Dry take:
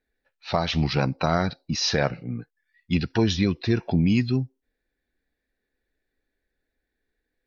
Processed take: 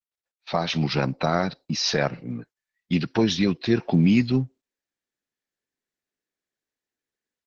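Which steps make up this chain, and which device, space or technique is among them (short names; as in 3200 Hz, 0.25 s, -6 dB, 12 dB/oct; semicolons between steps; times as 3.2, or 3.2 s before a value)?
video call (HPF 130 Hz 24 dB/oct; AGC gain up to 10.5 dB; gate -39 dBFS, range -17 dB; gain -5.5 dB; Opus 12 kbps 48000 Hz)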